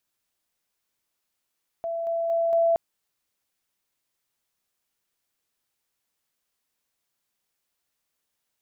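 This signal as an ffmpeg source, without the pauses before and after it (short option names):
-f lavfi -i "aevalsrc='pow(10,(-26.5+3*floor(t/0.23))/20)*sin(2*PI*669*t)':d=0.92:s=44100"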